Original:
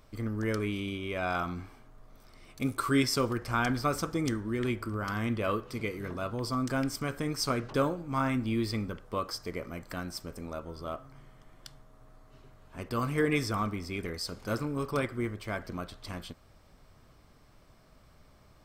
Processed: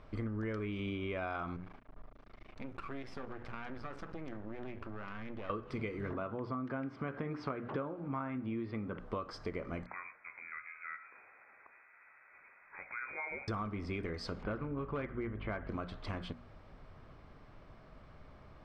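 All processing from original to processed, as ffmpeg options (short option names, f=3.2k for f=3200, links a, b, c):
-filter_complex "[0:a]asettb=1/sr,asplit=3[a][b][c];[a]atrim=end=1.564[d];[b]atrim=start=1.56:end=5.5,asetpts=PTS-STARTPTS,afade=t=in:d=0.004:c=qsin,afade=t=out:st=3.936:d=0.004:c=qsin,highshelf=f=5.2k:g=-6.5,aeval=exprs='max(val(0),0)':c=same,acompressor=threshold=-44dB:ratio=4:attack=3.2:release=140:knee=1:detection=peak[e];[c]atrim=start=5.496[f];[d][e]acrossfade=d=0.004:c1=hsin:c2=qsin[g];[g][f]acrossfade=d=0.004:c1=qsin:c2=hsin,asettb=1/sr,asplit=3[h][i][j];[h]atrim=end=6.134[k];[i]atrim=start=6.13:end=8.99,asetpts=PTS-STARTPTS,afade=t=in:d=0.004:c=qsin,afade=t=out:st=2.856:d=0.004:c=qsin,acompressor=mode=upward:threshold=-31dB:ratio=2.5:attack=3.2:release=140:knee=2.83:detection=peak,highpass=120,lowpass=2.4k[l];[j]atrim=start=8.986[m];[k][l]acrossfade=d=0.004:c1=hsin:c2=qsin[n];[n][m]acrossfade=d=0.004:c1=qsin:c2=hsin,asettb=1/sr,asplit=3[o][p][q];[o]atrim=end=9.864[r];[p]atrim=start=9.86:end=13.48,asetpts=PTS-STARTPTS,afade=t=in:d=0.004:c=qsin,afade=t=out:st=3.616:d=0.004:c=qsin,highpass=f=530:p=1,acompressor=threshold=-49dB:ratio=2:attack=3.2:release=140:knee=1:detection=peak,lowpass=f=2.2k:t=q:w=0.5098,lowpass=f=2.2k:t=q:w=0.6013,lowpass=f=2.2k:t=q:w=0.9,lowpass=f=2.2k:t=q:w=2.563,afreqshift=-2600[s];[q]atrim=start=13.476[t];[r][s]acrossfade=d=0.004:c1=hsin:c2=qsin[u];[u][t]acrossfade=d=0.004:c1=qsin:c2=hsin,asettb=1/sr,asplit=3[v][w][x];[v]atrim=end=14.434[y];[w]atrim=start=14.43:end=15.69,asetpts=PTS-STARTPTS,afade=t=in:d=0.004:c=qsin,afade=t=out:st=1.256:d=0.004:c=qsin,lowpass=f=3.1k:w=0.5412,lowpass=f=3.1k:w=1.3066,asoftclip=type=hard:threshold=-24dB,aeval=exprs='val(0)+0.00562*(sin(2*PI*50*n/s)+sin(2*PI*2*50*n/s)/2+sin(2*PI*3*50*n/s)/3+sin(2*PI*4*50*n/s)/4+sin(2*PI*5*50*n/s)/5)':c=same[z];[x]atrim=start=15.686[aa];[y][z]acrossfade=d=0.004:c1=hsin:c2=qsin[ab];[ab][aa]acrossfade=d=0.004:c1=qsin:c2=hsin,lowpass=2.6k,bandreject=f=60:t=h:w=6,bandreject=f=120:t=h:w=6,bandreject=f=180:t=h:w=6,bandreject=f=240:t=h:w=6,bandreject=f=300:t=h:w=6,acompressor=threshold=-39dB:ratio=10,volume=4dB"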